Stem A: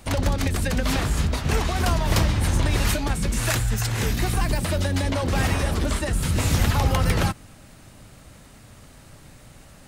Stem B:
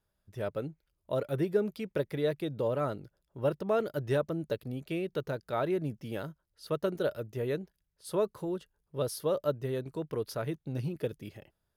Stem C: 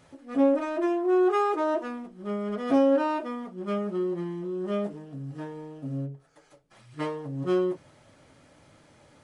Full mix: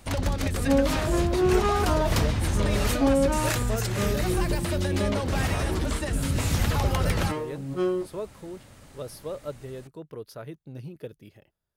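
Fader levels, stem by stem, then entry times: −4.0, −5.0, −1.0 decibels; 0.00, 0.00, 0.30 seconds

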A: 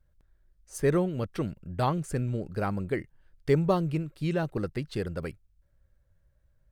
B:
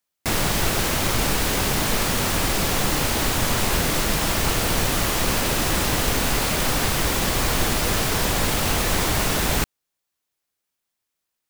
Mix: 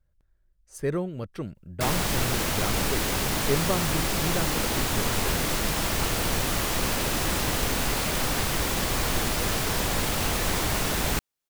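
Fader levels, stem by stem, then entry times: −3.0, −4.5 decibels; 0.00, 1.55 seconds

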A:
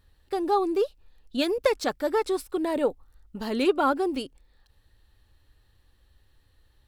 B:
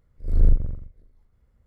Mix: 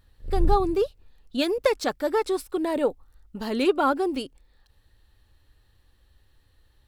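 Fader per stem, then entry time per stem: +1.0, −6.0 decibels; 0.00, 0.00 seconds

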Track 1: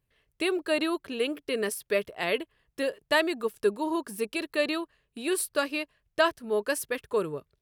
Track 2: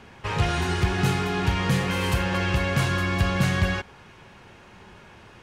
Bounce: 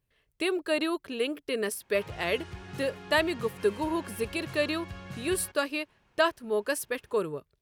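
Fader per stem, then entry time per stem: −1.0, −19.5 decibels; 0.00, 1.70 seconds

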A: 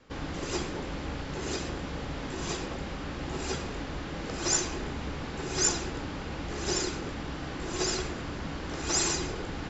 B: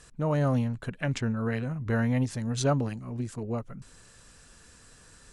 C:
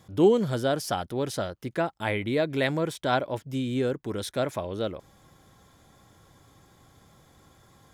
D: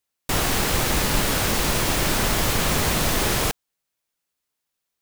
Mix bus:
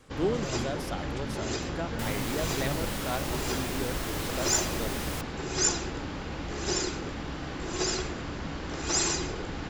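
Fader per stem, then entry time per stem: +0.5, −12.5, −9.0, −14.0 decibels; 0.00, 0.00, 0.00, 1.70 seconds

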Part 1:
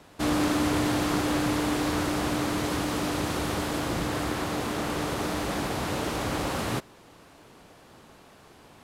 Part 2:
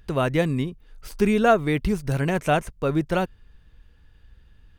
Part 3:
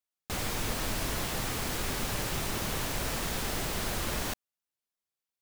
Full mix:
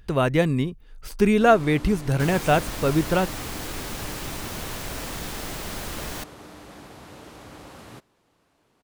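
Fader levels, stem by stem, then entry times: −14.5, +1.5, −0.5 decibels; 1.20, 0.00, 1.90 seconds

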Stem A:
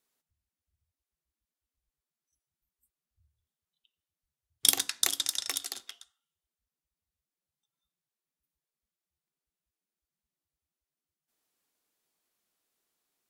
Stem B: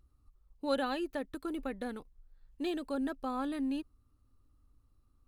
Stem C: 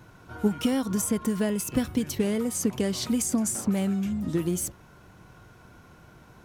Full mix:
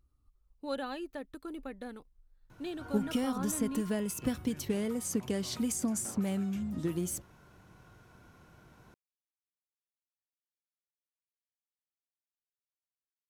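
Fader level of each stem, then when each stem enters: muted, −4.5 dB, −6.5 dB; muted, 0.00 s, 2.50 s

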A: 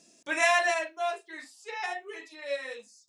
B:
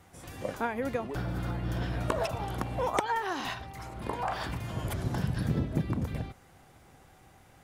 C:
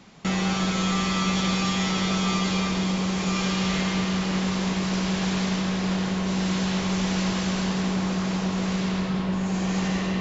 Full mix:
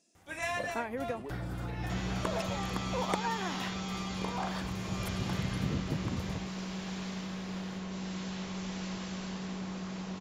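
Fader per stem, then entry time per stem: −11.5, −4.5, −13.5 decibels; 0.00, 0.15, 1.65 seconds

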